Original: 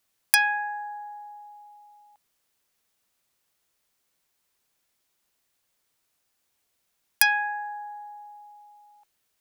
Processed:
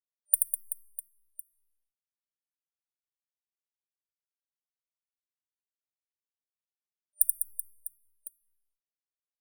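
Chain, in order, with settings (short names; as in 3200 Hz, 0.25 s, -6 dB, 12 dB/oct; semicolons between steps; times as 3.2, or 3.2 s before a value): crossover distortion -32 dBFS; reverse bouncing-ball echo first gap 80 ms, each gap 1.5×, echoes 5; FFT band-reject 600–9100 Hz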